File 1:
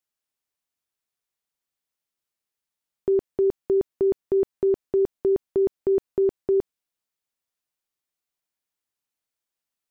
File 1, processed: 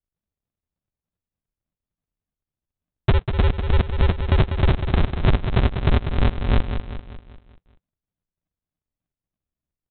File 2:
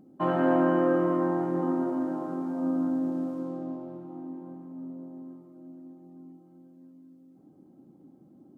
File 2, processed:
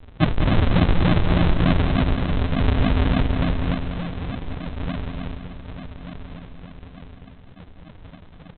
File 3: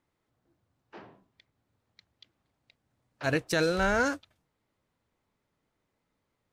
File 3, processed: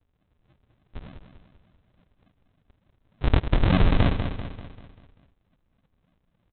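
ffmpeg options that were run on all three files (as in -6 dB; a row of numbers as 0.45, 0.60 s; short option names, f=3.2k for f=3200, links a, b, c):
-af "lowpass=1.2k,equalizer=f=180:t=o:w=0.35:g=10,acompressor=threshold=-23dB:ratio=4,aresample=8000,acrusher=samples=33:mix=1:aa=0.000001:lfo=1:lforange=33:lforate=3.4,aresample=44100,aecho=1:1:195|390|585|780|975|1170:0.398|0.191|0.0917|0.044|0.0211|0.0101,volume=8.5dB"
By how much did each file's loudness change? +2.0, +6.0, +4.0 LU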